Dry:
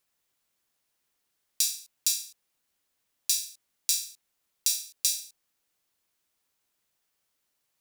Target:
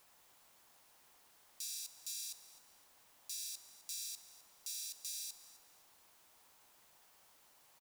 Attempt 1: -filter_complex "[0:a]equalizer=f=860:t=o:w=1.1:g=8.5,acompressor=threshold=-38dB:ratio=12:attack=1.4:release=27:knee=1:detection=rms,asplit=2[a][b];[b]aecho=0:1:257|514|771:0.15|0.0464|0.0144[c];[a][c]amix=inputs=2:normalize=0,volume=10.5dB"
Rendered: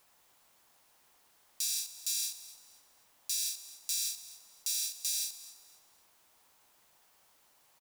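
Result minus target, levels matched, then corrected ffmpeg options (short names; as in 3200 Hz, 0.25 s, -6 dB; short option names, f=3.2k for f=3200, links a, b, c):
compressor: peak gain reduction -10.5 dB
-filter_complex "[0:a]equalizer=f=860:t=o:w=1.1:g=8.5,acompressor=threshold=-49.5dB:ratio=12:attack=1.4:release=27:knee=1:detection=rms,asplit=2[a][b];[b]aecho=0:1:257|514|771:0.15|0.0464|0.0144[c];[a][c]amix=inputs=2:normalize=0,volume=10.5dB"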